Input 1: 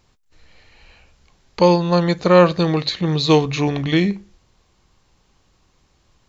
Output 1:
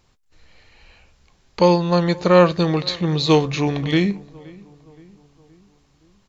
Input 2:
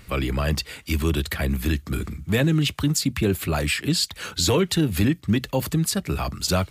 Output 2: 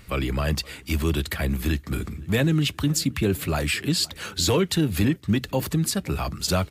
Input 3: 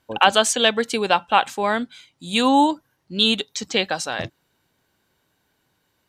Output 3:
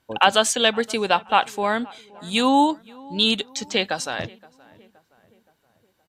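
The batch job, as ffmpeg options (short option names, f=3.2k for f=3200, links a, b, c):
-filter_complex "[0:a]asplit=2[a][b];[b]adelay=521,lowpass=f=1.9k:p=1,volume=-23dB,asplit=2[c][d];[d]adelay=521,lowpass=f=1.9k:p=1,volume=0.53,asplit=2[e][f];[f]adelay=521,lowpass=f=1.9k:p=1,volume=0.53,asplit=2[g][h];[h]adelay=521,lowpass=f=1.9k:p=1,volume=0.53[i];[a][c][e][g][i]amix=inputs=5:normalize=0,volume=-1dB" -ar 48000 -c:a aac -b:a 96k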